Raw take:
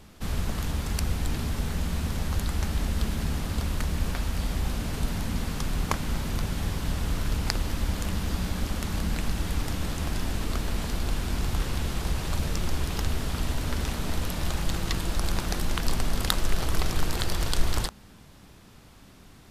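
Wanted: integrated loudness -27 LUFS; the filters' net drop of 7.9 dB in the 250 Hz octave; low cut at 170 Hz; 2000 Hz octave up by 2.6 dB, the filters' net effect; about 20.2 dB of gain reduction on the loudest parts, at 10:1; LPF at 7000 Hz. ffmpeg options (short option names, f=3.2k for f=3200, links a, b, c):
-af "highpass=170,lowpass=7k,equalizer=f=250:t=o:g=-9,equalizer=f=2k:t=o:g=3.5,acompressor=threshold=-44dB:ratio=10,volume=20dB"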